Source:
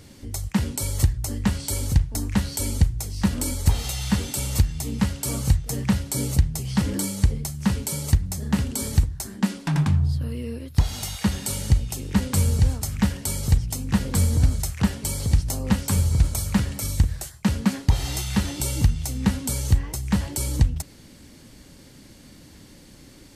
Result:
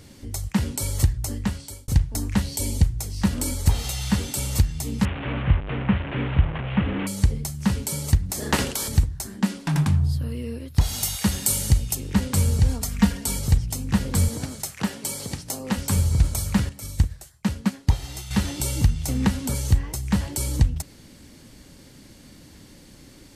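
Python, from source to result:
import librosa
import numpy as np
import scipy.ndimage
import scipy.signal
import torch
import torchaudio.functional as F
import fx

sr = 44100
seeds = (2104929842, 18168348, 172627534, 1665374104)

y = fx.peak_eq(x, sr, hz=1400.0, db=-12.0, octaves=0.5, at=(2.42, 2.82))
y = fx.delta_mod(y, sr, bps=16000, step_db=-25.5, at=(5.05, 7.07))
y = fx.spec_clip(y, sr, under_db=20, at=(8.29, 8.87), fade=0.02)
y = fx.high_shelf(y, sr, hz=9600.0, db=11.5, at=(9.69, 10.21))
y = fx.high_shelf(y, sr, hz=6400.0, db=11.0, at=(10.81, 11.95))
y = fx.comb(y, sr, ms=4.3, depth=0.71, at=(12.68, 13.39))
y = fx.highpass(y, sr, hz=220.0, slope=12, at=(14.28, 15.77))
y = fx.upward_expand(y, sr, threshold_db=-35.0, expansion=1.5, at=(16.69, 18.31))
y = fx.band_squash(y, sr, depth_pct=70, at=(19.08, 19.55))
y = fx.edit(y, sr, fx.fade_out_span(start_s=1.28, length_s=0.6), tone=tone)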